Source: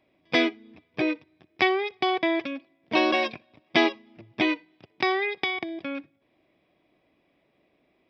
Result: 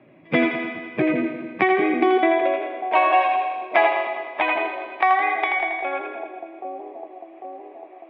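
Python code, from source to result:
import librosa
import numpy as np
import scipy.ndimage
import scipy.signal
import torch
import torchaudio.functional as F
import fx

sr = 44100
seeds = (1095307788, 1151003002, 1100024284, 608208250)

p1 = fx.spec_quant(x, sr, step_db=15)
p2 = scipy.signal.sosfilt(scipy.signal.butter(4, 2500.0, 'lowpass', fs=sr, output='sos'), p1)
p3 = p2 + fx.echo_split(p2, sr, split_hz=560.0, low_ms=798, high_ms=82, feedback_pct=52, wet_db=-5.0, dry=0)
p4 = fx.filter_sweep_highpass(p3, sr, from_hz=130.0, to_hz=770.0, start_s=1.47, end_s=2.71, q=2.6)
p5 = fx.echo_heads(p4, sr, ms=102, heads='first and second', feedback_pct=43, wet_db=-15.0)
p6 = fx.band_squash(p5, sr, depth_pct=40)
y = p6 * 10.0 ** (3.0 / 20.0)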